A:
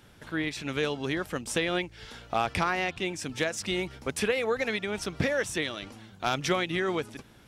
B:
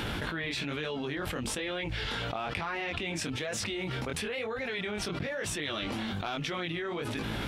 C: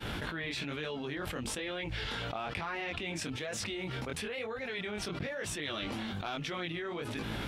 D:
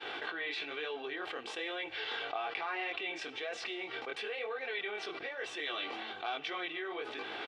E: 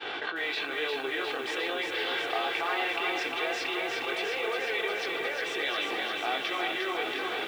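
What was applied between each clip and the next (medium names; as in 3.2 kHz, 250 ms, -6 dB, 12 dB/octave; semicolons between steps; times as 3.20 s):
resonant high shelf 4.7 kHz -6 dB, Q 1.5; chorus 1.1 Hz, delay 18.5 ms, depth 5.7 ms; level flattener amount 100%; trim -8.5 dB
expander -30 dBFS
Chebyshev band-pass 510–3400 Hz, order 2; comb 2.6 ms, depth 56%; Schroeder reverb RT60 1.1 s, combs from 33 ms, DRR 17.5 dB
bit-crushed delay 355 ms, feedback 80%, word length 10-bit, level -4 dB; trim +5.5 dB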